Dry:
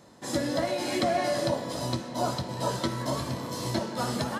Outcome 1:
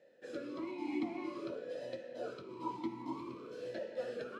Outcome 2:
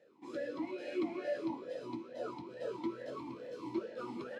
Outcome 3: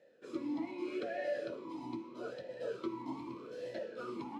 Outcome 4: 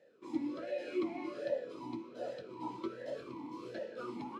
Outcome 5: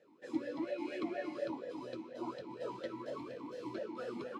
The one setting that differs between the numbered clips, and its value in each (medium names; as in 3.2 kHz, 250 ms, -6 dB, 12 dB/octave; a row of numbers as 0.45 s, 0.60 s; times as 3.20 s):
talking filter, rate: 0.51 Hz, 2.3 Hz, 0.8 Hz, 1.3 Hz, 4.2 Hz